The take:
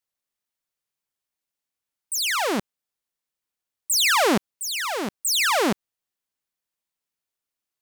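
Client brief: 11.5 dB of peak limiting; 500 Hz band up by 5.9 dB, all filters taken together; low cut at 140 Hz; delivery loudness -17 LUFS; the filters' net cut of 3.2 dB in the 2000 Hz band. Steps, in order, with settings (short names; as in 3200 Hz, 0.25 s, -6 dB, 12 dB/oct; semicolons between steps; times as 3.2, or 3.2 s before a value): HPF 140 Hz; bell 500 Hz +7.5 dB; bell 2000 Hz -4.5 dB; gain +8.5 dB; limiter -10.5 dBFS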